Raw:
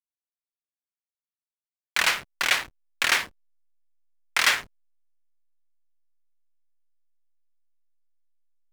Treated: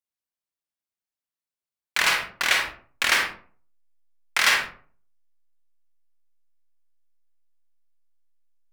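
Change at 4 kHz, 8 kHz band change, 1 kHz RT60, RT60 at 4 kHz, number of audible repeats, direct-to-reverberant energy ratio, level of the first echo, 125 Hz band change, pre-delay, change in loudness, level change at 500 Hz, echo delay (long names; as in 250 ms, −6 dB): +1.5 dB, +1.0 dB, 0.45 s, 0.25 s, no echo audible, 3.0 dB, no echo audible, can't be measured, 38 ms, +1.5 dB, +2.0 dB, no echo audible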